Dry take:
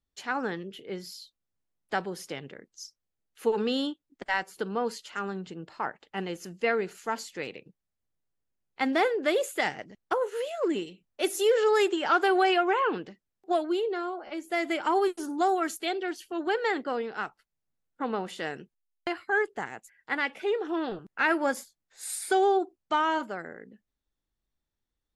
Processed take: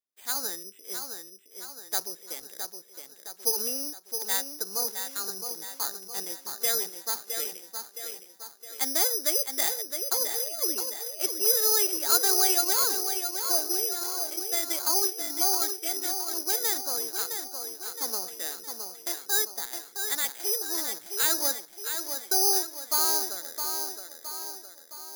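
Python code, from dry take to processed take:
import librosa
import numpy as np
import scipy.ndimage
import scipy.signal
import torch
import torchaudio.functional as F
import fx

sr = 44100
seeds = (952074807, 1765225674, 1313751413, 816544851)

p1 = scipy.signal.sosfilt(scipy.signal.butter(2, 330.0, 'highpass', fs=sr, output='sos'), x)
p2 = p1 + fx.echo_tape(p1, sr, ms=665, feedback_pct=55, wet_db=-5.5, lp_hz=5300.0, drive_db=16.0, wow_cents=17, dry=0)
p3 = (np.kron(scipy.signal.resample_poly(p2, 1, 8), np.eye(8)[0]) * 8)[:len(p2)]
y = p3 * 10.0 ** (-8.5 / 20.0)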